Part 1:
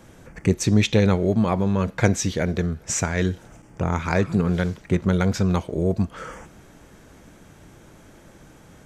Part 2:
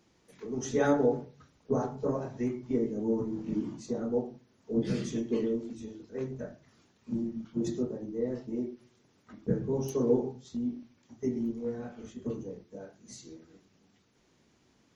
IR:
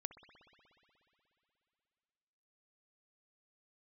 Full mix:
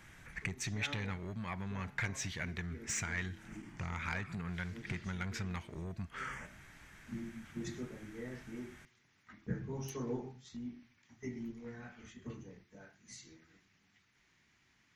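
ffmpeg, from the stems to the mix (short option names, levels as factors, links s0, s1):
-filter_complex "[0:a]acompressor=threshold=0.0447:ratio=2.5,asoftclip=type=tanh:threshold=0.0944,volume=0.376,asplit=2[s0][s1];[1:a]volume=0.596[s2];[s1]apad=whole_len=659640[s3];[s2][s3]sidechaincompress=threshold=0.00562:ratio=10:attack=7.5:release=817[s4];[s0][s4]amix=inputs=2:normalize=0,equalizer=f=250:t=o:w=1:g=-5,equalizer=f=500:t=o:w=1:g=-11,equalizer=f=2000:t=o:w=1:g=11"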